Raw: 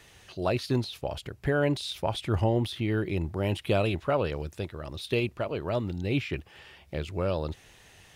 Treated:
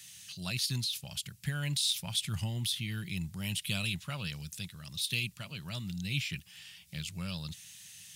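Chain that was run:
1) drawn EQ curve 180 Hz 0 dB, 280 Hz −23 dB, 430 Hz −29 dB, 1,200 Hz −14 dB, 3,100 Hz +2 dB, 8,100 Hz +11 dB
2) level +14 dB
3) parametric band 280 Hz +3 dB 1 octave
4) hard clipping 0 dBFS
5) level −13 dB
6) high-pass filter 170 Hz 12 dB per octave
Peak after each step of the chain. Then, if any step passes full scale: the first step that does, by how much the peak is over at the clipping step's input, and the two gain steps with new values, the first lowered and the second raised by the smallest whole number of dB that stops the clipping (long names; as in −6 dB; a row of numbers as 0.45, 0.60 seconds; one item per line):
−16.5, −2.5, −2.0, −2.0, −15.0, −18.0 dBFS
no step passes full scale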